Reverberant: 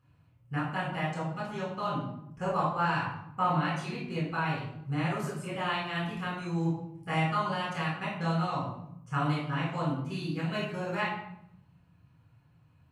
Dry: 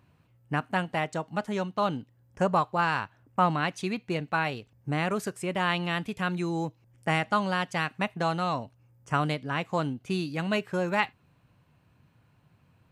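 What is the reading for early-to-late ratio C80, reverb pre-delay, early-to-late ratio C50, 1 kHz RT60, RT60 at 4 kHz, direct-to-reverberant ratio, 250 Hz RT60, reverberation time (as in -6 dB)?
6.0 dB, 8 ms, 2.5 dB, 0.70 s, 0.50 s, -6.5 dB, 1.3 s, 0.75 s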